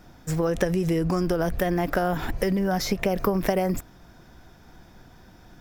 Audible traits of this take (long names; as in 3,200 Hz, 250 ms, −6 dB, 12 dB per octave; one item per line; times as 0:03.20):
background noise floor −52 dBFS
spectral slope −6.0 dB per octave